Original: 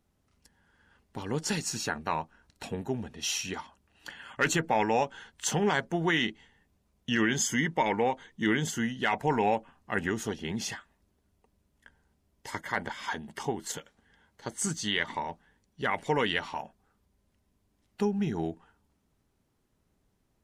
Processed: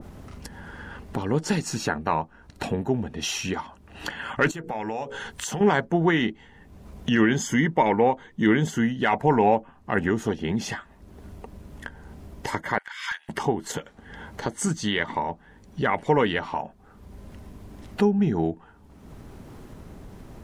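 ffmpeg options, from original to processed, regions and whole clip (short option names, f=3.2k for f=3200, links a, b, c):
-filter_complex "[0:a]asettb=1/sr,asplit=3[a][b][c];[a]atrim=end=4.514[d];[b]atrim=start=4.51:end=5.61,asetpts=PTS-STARTPTS,afade=t=in:d=0.004:c=qsin,afade=t=out:st=1.096:d=0.004:c=qsin,aemphasis=mode=production:type=cd,bandreject=f=60:t=h:w=6,bandreject=f=120:t=h:w=6,bandreject=f=180:t=h:w=6,bandreject=f=240:t=h:w=6,bandreject=f=300:t=h:w=6,bandreject=f=360:t=h:w=6,bandreject=f=420:t=h:w=6,bandreject=f=480:t=h:w=6,bandreject=f=540:t=h:w=6,bandreject=f=600:t=h:w=6,acompressor=threshold=-44dB:ratio=2.5:attack=3.2:release=140:knee=1:detection=peak[e];[c]atrim=start=5.606[f];[d][e]acrossfade=d=0.004:c1=hsin:c2=qsin[g];[g][f]acrossfade=d=0.004:c1=qsin:c2=hsin,asettb=1/sr,asplit=3[h][i][j];[h]atrim=end=12.784[k];[i]atrim=start=12.78:end=13.29,asetpts=PTS-STARTPTS,afade=t=in:d=0.004:c=qsin,afade=t=out:st=0.506:d=0.004:c=qsin,highpass=f=1.5k:w=0.5412,highpass=f=1.5k:w=1.3066,asoftclip=type=hard:threshold=-30dB[l];[j]atrim=start=13.286[m];[k][l]acrossfade=d=0.004:c1=hsin:c2=qsin[n];[n][m]acrossfade=d=0.004:c1=qsin:c2=hsin,highshelf=f=2.2k:g=-10.5,acompressor=mode=upward:threshold=-31dB:ratio=2.5,adynamicequalizer=threshold=0.01:dfrequency=1600:dqfactor=0.7:tfrequency=1600:tqfactor=0.7:attack=5:release=100:ratio=0.375:range=2:mode=cutabove:tftype=highshelf,volume=8dB"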